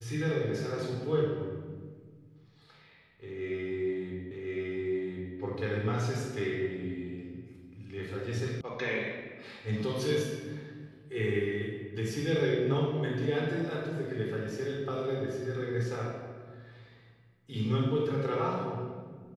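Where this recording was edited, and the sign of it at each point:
4.31 repeat of the last 1.06 s
8.61 sound cut off

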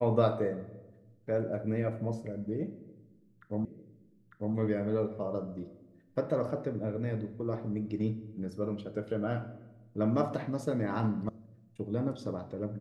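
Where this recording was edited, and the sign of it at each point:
3.65 repeat of the last 0.9 s
11.29 sound cut off

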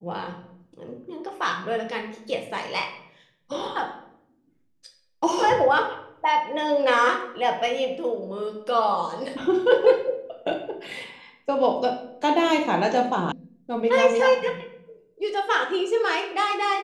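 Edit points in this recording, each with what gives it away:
13.32 sound cut off

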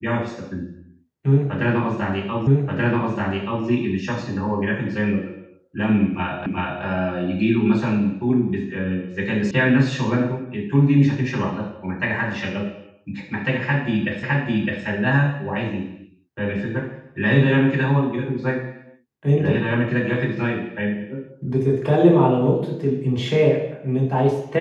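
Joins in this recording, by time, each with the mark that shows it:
2.47 repeat of the last 1.18 s
6.46 repeat of the last 0.38 s
9.51 sound cut off
14.23 repeat of the last 0.61 s

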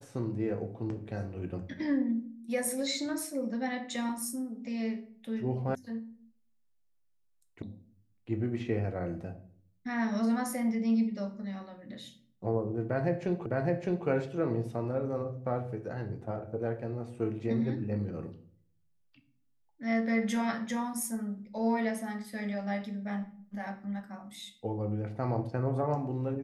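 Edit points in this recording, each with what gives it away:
5.75 sound cut off
7.62 sound cut off
13.46 repeat of the last 0.61 s

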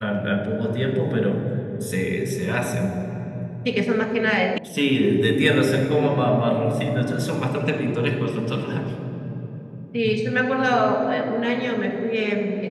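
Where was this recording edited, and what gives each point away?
4.58 sound cut off

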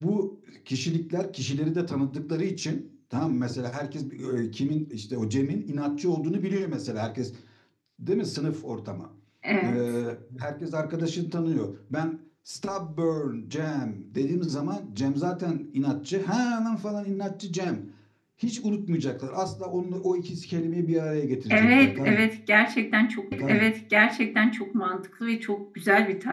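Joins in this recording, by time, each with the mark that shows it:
23.32 repeat of the last 1.43 s

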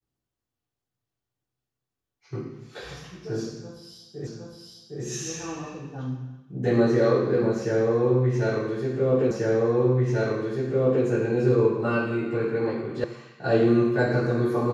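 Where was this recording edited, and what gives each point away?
4.27 repeat of the last 0.76 s
9.31 repeat of the last 1.74 s
13.04 sound cut off

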